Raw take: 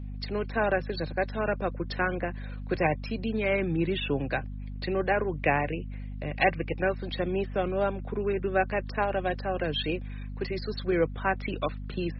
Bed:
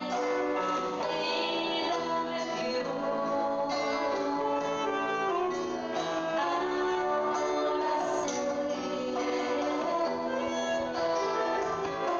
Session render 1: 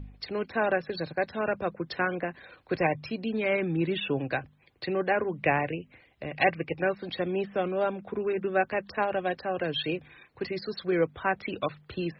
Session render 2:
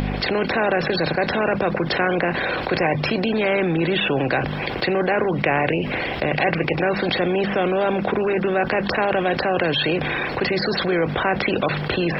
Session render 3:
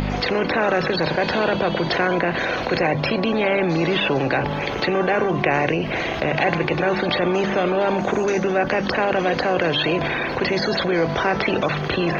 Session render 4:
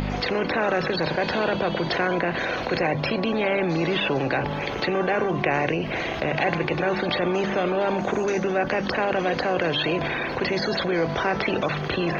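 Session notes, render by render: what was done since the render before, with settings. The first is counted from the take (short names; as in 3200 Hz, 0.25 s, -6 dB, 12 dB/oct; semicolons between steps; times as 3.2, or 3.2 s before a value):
de-hum 50 Hz, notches 5
per-bin compression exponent 0.6; fast leveller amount 70%
add bed 0 dB
gain -3.5 dB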